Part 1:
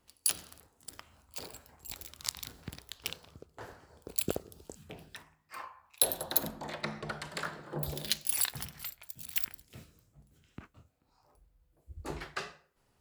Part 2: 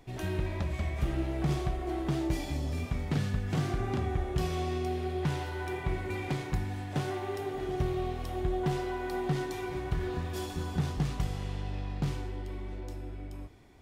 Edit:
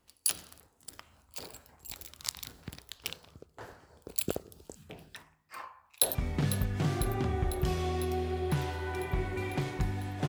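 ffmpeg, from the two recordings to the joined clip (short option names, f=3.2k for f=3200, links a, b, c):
-filter_complex "[0:a]apad=whole_dur=10.28,atrim=end=10.28,atrim=end=6.152[a];[1:a]atrim=start=2.878:end=7.01[b];[a][b]acrossfade=d=0.004:c1=hsin:c2=hsin,asplit=2[c][d];[d]afade=t=in:st=5.84:d=0.01,afade=t=out:st=6.15:d=0.01,aecho=0:1:500|1000|1500|2000|2500|3000|3500|4000|4500|5000:0.281838|0.197287|0.138101|0.0966705|0.0676694|0.0473686|0.033158|0.0232106|0.0162474|0.0113732[e];[c][e]amix=inputs=2:normalize=0"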